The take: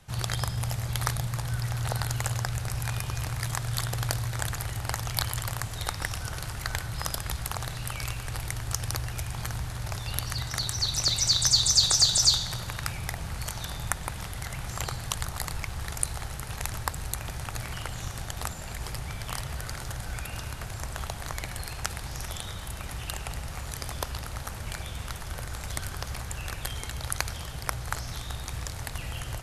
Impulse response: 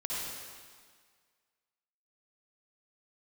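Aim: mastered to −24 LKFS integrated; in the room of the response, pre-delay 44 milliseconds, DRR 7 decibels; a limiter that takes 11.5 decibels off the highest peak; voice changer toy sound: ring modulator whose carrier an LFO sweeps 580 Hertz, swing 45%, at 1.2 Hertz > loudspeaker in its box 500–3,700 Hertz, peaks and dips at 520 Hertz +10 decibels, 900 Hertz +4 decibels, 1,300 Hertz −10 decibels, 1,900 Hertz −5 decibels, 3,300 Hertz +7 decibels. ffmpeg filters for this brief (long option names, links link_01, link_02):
-filter_complex "[0:a]alimiter=limit=-15dB:level=0:latency=1,asplit=2[link_01][link_02];[1:a]atrim=start_sample=2205,adelay=44[link_03];[link_02][link_03]afir=irnorm=-1:irlink=0,volume=-11.5dB[link_04];[link_01][link_04]amix=inputs=2:normalize=0,aeval=exprs='val(0)*sin(2*PI*580*n/s+580*0.45/1.2*sin(2*PI*1.2*n/s))':channel_layout=same,highpass=500,equalizer=frequency=520:width_type=q:width=4:gain=10,equalizer=frequency=900:width_type=q:width=4:gain=4,equalizer=frequency=1300:width_type=q:width=4:gain=-10,equalizer=frequency=1900:width_type=q:width=4:gain=-5,equalizer=frequency=3300:width_type=q:width=4:gain=7,lowpass=frequency=3700:width=0.5412,lowpass=frequency=3700:width=1.3066,volume=9.5dB"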